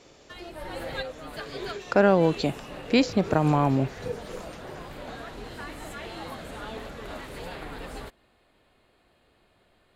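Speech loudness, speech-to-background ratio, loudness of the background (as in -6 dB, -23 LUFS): -24.5 LUFS, 15.5 dB, -40.0 LUFS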